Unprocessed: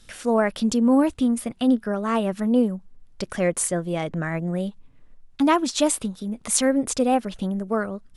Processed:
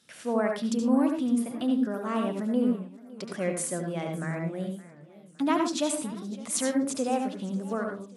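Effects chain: HPF 130 Hz 24 dB/oct; reverb RT60 0.25 s, pre-delay 71 ms, DRR 3.5 dB; warbling echo 0.564 s, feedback 46%, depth 180 cents, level -19.5 dB; gain -8 dB

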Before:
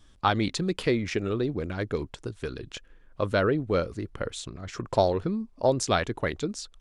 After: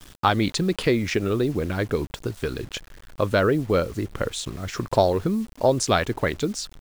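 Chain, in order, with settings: in parallel at -2 dB: compressor 12:1, threshold -30 dBFS, peak gain reduction 14.5 dB; on the sum: bit-crush 8-bit; gain +2 dB

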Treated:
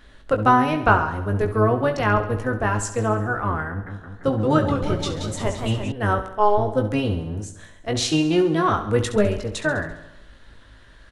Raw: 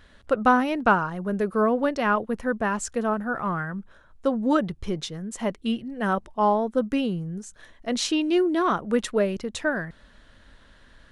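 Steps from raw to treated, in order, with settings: octaver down 1 oct, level +4 dB; bell 150 Hz -8 dB 1.3 oct; doubler 19 ms -6.5 dB; feedback echo 68 ms, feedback 60%, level -12 dB; 3.69–5.92 warbling echo 0.172 s, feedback 65%, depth 181 cents, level -6.5 dB; gain +2 dB

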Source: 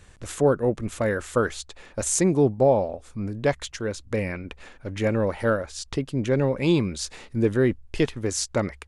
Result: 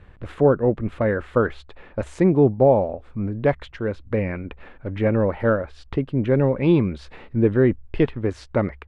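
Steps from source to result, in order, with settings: air absorption 480 m; gain +4.5 dB

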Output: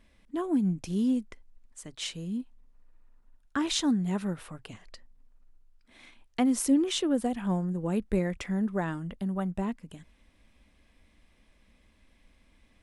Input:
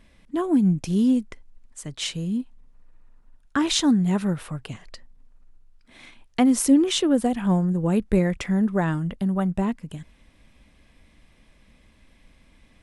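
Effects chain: bell 140 Hz -12 dB 0.27 oct; gain -6.5 dB

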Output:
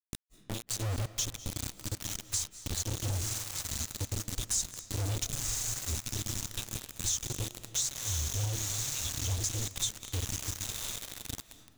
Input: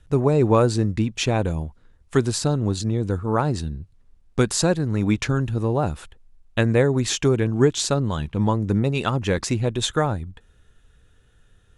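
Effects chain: inverse Chebyshev band-stop 170–1900 Hz, stop band 40 dB; diffused feedback echo 1.058 s, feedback 40%, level -4.5 dB; 2.16–2.65 expander -28 dBFS; bell 4600 Hz -7 dB 0.42 oct; flange 0.96 Hz, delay 0.2 ms, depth 5.8 ms, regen -8%; notches 60/120/180/240/300/360/420/480/540/600 Hz; bit-crush 6-bit; dynamic EQ 6400 Hz, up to +7 dB, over -49 dBFS, Q 3.3; compressor 3:1, threshold -34 dBFS, peak gain reduction 10 dB; on a send at -13.5 dB: reverb RT60 1.2 s, pre-delay 0.167 s; on the sum: gain +3.5 dB

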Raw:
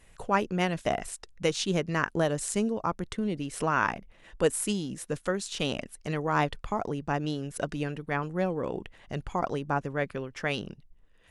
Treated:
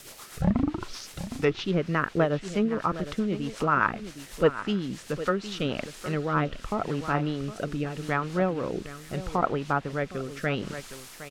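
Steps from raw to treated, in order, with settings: tape start at the beginning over 1.62 s; LPF 5800 Hz 12 dB/oct; bell 1300 Hz +8.5 dB 0.21 oct; echo 0.762 s -12.5 dB; in parallel at -5.5 dB: requantised 6-bit, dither triangular; on the sum: rotary speaker horn 8 Hz, later 0.8 Hz, at 4.93; treble ducked by the level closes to 2600 Hz, closed at -22 dBFS; thin delay 0.929 s, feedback 62%, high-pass 2000 Hz, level -20 dB

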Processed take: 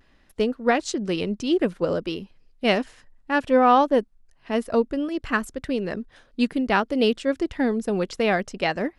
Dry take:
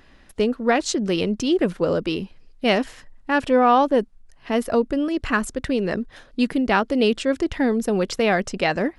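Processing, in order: vibrato 0.6 Hz 31 cents; upward expander 1.5:1, over -29 dBFS

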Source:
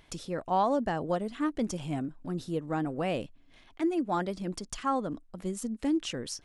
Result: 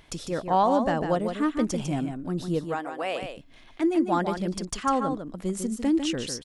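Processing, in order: 2.64–3.22 HPF 580 Hz 12 dB/oct; on a send: echo 0.15 s -7 dB; on the sum: gain +4.5 dB

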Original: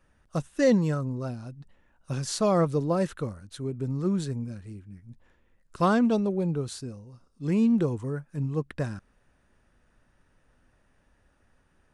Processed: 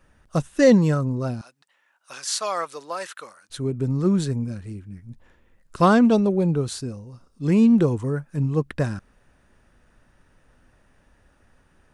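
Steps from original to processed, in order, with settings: 1.41–3.5 HPF 1100 Hz 12 dB/oct; gain +6.5 dB

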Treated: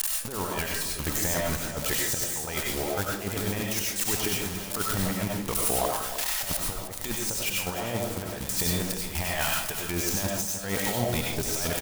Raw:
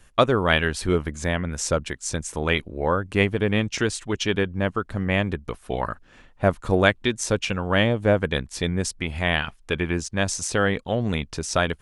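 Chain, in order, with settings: switching spikes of -16 dBFS; bell 860 Hz +7.5 dB 0.6 oct; negative-ratio compressor -26 dBFS, ratio -0.5; limiter -17 dBFS, peak gain reduction 8.5 dB; step gate "x..xxxxx." 182 bpm -12 dB; echo 0.307 s -11.5 dB; reverb RT60 0.40 s, pre-delay 55 ms, DRR -2 dB

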